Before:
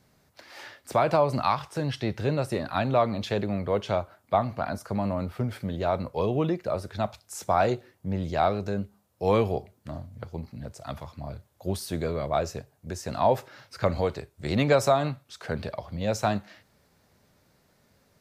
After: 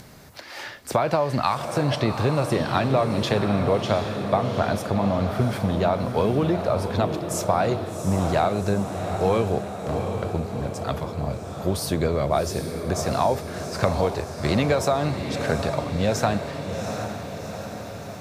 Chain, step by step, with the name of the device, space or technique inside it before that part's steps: upward and downward compression (upward compressor, threshold -45 dBFS; compression, threshold -26 dBFS, peak gain reduction 10 dB); echo that smears into a reverb 748 ms, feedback 62%, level -7 dB; trim +8 dB

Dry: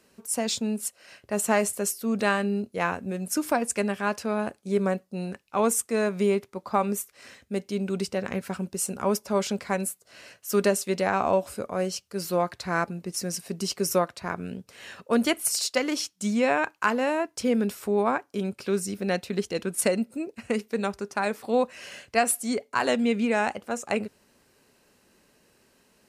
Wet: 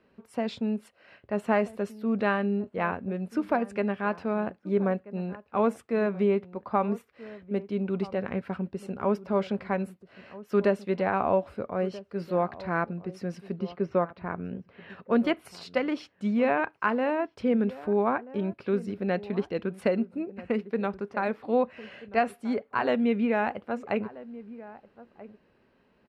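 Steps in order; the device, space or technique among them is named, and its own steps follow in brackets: 13.56–14.90 s: distance through air 220 m; shout across a valley (distance through air 400 m; echo from a far wall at 220 m, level -17 dB)

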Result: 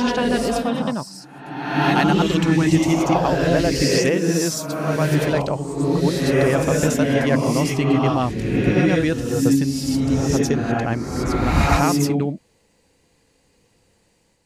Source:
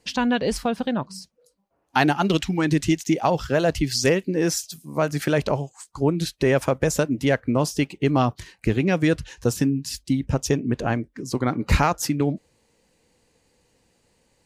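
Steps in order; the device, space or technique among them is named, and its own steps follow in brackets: reverse reverb (reverse; reverberation RT60 1.3 s, pre-delay 84 ms, DRR -2.5 dB; reverse); trim -1 dB

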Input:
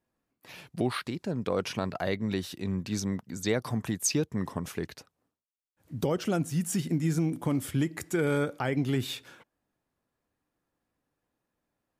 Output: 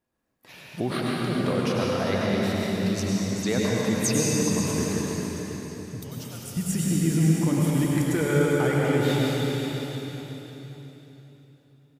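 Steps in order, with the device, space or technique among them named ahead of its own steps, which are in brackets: 6.00–6.57 s: pre-emphasis filter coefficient 0.97; cave (delay 399 ms -10.5 dB; reverberation RT60 3.6 s, pre-delay 90 ms, DRR -4.5 dB); feedback delay 543 ms, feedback 31%, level -11 dB

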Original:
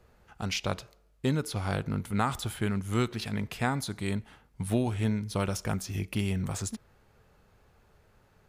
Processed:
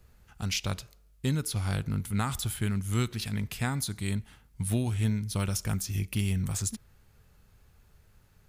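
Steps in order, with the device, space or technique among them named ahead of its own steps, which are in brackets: smiley-face EQ (bass shelf 140 Hz +6 dB; peaking EQ 590 Hz -7.5 dB 2.5 oct; treble shelf 6.9 kHz +9 dB)

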